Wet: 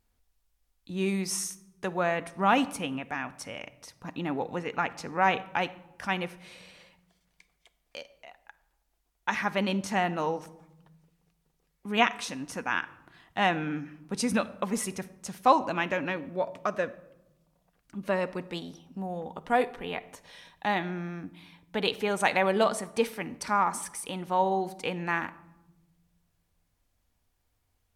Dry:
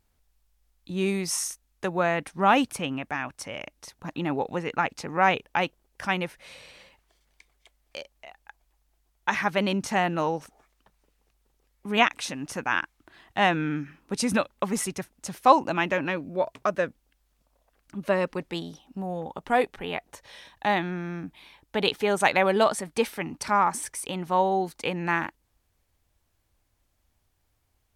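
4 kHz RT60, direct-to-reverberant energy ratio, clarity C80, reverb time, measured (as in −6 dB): 0.55 s, 11.0 dB, 19.5 dB, 0.90 s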